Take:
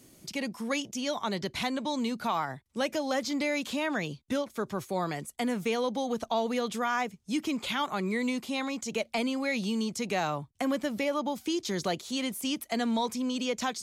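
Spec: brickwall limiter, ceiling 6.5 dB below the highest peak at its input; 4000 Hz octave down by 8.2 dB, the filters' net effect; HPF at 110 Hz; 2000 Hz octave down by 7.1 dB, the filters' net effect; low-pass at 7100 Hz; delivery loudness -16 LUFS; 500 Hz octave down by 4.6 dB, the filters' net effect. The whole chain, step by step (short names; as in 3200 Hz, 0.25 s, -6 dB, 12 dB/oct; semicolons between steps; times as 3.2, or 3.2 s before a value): HPF 110 Hz; LPF 7100 Hz; bell 500 Hz -5 dB; bell 2000 Hz -6.5 dB; bell 4000 Hz -8 dB; gain +20.5 dB; limiter -7.5 dBFS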